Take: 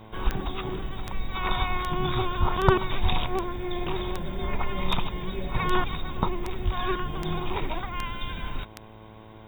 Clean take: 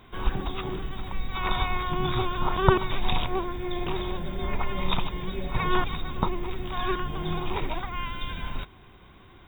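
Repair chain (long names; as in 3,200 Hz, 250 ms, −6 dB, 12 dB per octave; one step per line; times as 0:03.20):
clipped peaks rebuilt −6.5 dBFS
click removal
hum removal 109.1 Hz, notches 10
0:02.39–0:02.51: high-pass filter 140 Hz 24 dB per octave
0:03.02–0:03.14: high-pass filter 140 Hz 24 dB per octave
0:06.64–0:06.76: high-pass filter 140 Hz 24 dB per octave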